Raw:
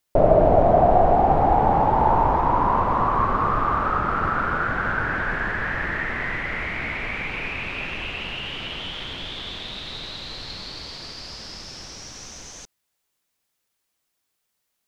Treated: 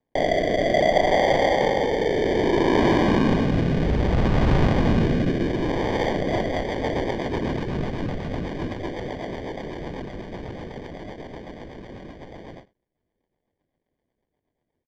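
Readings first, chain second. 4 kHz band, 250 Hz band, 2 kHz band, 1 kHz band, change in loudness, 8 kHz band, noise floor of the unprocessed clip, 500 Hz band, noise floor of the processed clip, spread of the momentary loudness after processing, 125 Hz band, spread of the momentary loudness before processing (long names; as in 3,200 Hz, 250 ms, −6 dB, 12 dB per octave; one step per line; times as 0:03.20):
−1.5 dB, +6.5 dB, −3.5 dB, −7.0 dB, −0.5 dB, can't be measured, −77 dBFS, +1.0 dB, −81 dBFS, 19 LU, +3.5 dB, 18 LU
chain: variable-slope delta modulation 64 kbit/s
three-way crossover with the lows and the highs turned down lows −13 dB, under 200 Hz, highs −14 dB, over 3,900 Hz
in parallel at −1 dB: compressor whose output falls as the input rises −24 dBFS, ratio −0.5
on the sum: decimation without filtering 33×
rotating-speaker cabinet horn 0.6 Hz, later 8 Hz, at 0:05.87
high-frequency loss of the air 200 metres
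on a send: single-tap delay 79 ms −17.5 dB
on the sum: every ending faded ahead of time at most 240 dB per second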